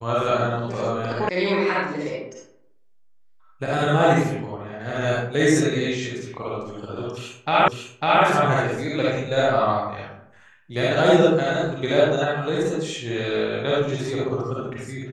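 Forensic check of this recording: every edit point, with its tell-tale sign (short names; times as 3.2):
1.29 sound cut off
7.68 repeat of the last 0.55 s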